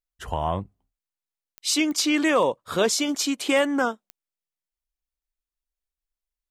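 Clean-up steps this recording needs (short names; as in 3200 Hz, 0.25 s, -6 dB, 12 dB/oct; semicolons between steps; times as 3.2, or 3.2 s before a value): clip repair -11 dBFS; de-click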